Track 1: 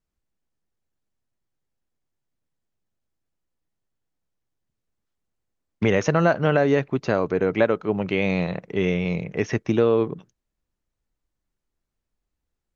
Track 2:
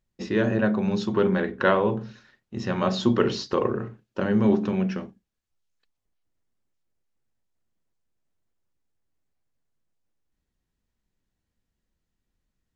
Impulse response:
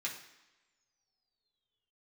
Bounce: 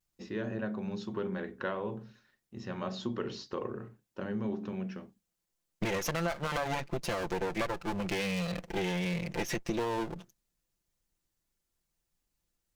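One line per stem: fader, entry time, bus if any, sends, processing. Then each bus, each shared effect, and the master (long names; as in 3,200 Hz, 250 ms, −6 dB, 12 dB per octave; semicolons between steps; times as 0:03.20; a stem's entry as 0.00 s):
−2.5 dB, 0.00 s, no send, lower of the sound and its delayed copy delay 5.8 ms; high-shelf EQ 3,500 Hz +11.5 dB
−12.0 dB, 0.00 s, no send, no processing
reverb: not used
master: downward compressor 4 to 1, threshold −30 dBFS, peak gain reduction 12.5 dB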